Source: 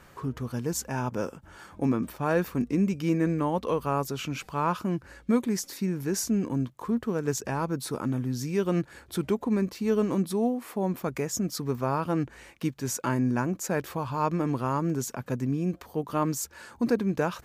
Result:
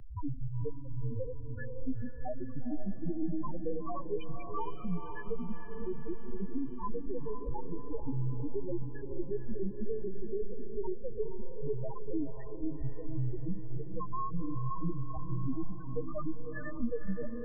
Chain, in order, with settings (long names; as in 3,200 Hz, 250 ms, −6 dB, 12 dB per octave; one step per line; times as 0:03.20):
gain on one half-wave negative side −12 dB
mains-hum notches 50/100/150/200/250 Hz
downward compressor 6 to 1, threshold −36 dBFS, peak gain reduction 15 dB
chorus effect 2.8 Hz, delay 15.5 ms, depth 3.9 ms
linear-prediction vocoder at 8 kHz pitch kept
spectral peaks only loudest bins 2
on a send: feedback delay with all-pass diffusion 483 ms, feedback 54%, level −8 dB
on the sum: multiband upward and downward compressor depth 40%
level +15.5 dB